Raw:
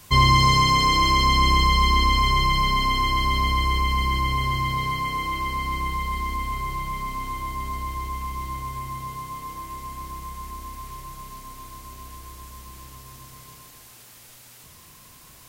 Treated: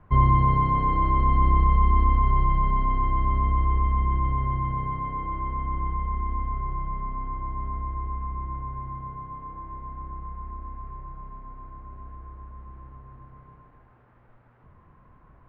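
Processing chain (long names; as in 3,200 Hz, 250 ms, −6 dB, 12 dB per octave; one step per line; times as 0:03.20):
low-pass filter 1,500 Hz 24 dB per octave
low-shelf EQ 70 Hz +9.5 dB
level −3.5 dB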